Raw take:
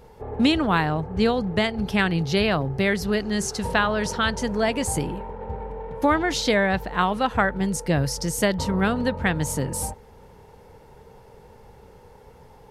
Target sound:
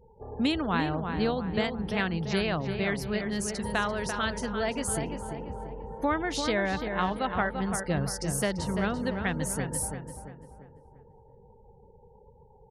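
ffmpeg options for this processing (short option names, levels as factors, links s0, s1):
-filter_complex "[0:a]asplit=2[s0][s1];[s1]aecho=0:1:378:0.0708[s2];[s0][s2]amix=inputs=2:normalize=0,afftfilt=real='re*gte(hypot(re,im),0.00891)':imag='im*gte(hypot(re,im),0.00891)':win_size=1024:overlap=0.75,equalizer=f=9800:w=5.7:g=11,asplit=2[s3][s4];[s4]adelay=341,lowpass=f=2400:p=1,volume=0.501,asplit=2[s5][s6];[s6]adelay=341,lowpass=f=2400:p=1,volume=0.45,asplit=2[s7][s8];[s8]adelay=341,lowpass=f=2400:p=1,volume=0.45,asplit=2[s9][s10];[s10]adelay=341,lowpass=f=2400:p=1,volume=0.45,asplit=2[s11][s12];[s12]adelay=341,lowpass=f=2400:p=1,volume=0.45[s13];[s5][s7][s9][s11][s13]amix=inputs=5:normalize=0[s14];[s3][s14]amix=inputs=2:normalize=0,volume=0.422"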